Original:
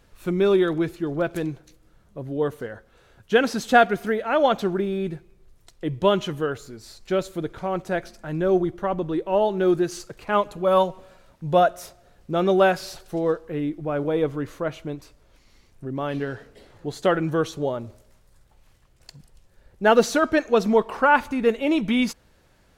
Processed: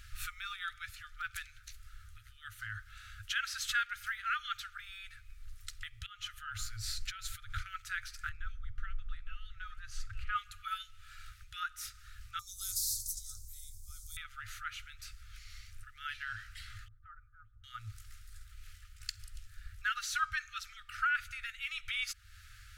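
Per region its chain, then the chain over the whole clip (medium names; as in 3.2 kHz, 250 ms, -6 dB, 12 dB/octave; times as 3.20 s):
6.06–7.66 s: bass shelf 210 Hz +7 dB + hum notches 60/120/180/240/300 Hz + compression 12:1, threshold -31 dBFS
8.29–10.36 s: tilt EQ -3 dB/octave + delay 862 ms -11 dB
12.39–14.17 s: inverse Chebyshev band-stop 410–2900 Hz, stop band 50 dB + treble shelf 4.6 kHz -7 dB + spectrum-flattening compressor 4:1
16.88–17.64 s: Bessel low-pass 560 Hz, order 4 + upward expansion, over -32 dBFS
whole clip: compression 2.5:1, threshold -39 dBFS; FFT band-reject 110–1200 Hz; trim +7 dB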